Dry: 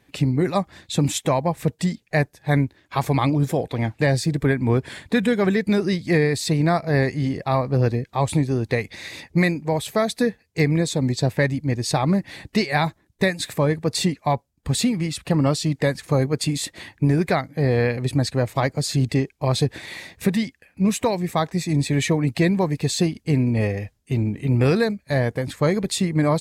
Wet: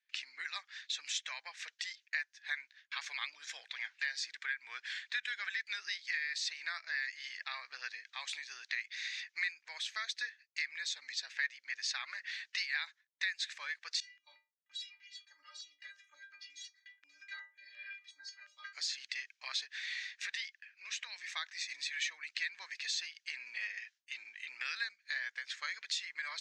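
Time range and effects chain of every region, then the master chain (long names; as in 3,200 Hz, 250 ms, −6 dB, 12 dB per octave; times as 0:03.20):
0:11.43–0:12.31: parametric band 1,500 Hz +4 dB 1.8 octaves + mains-hum notches 60/120/180/240/300/360/420/480/540 Hz
0:14.00–0:18.73: high-shelf EQ 8,500 Hz −11 dB + stiff-string resonator 290 Hz, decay 0.35 s, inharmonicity 0.008 + notch on a step sequencer 5.6 Hz 270–7,500 Hz
0:20.40–0:21.16: band-pass filter 370–6,900 Hz + downward compressor 3 to 1, threshold −27 dBFS
whole clip: noise gate with hold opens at −45 dBFS; Chebyshev band-pass filter 1,600–6,200 Hz, order 3; downward compressor 2 to 1, threshold −40 dBFS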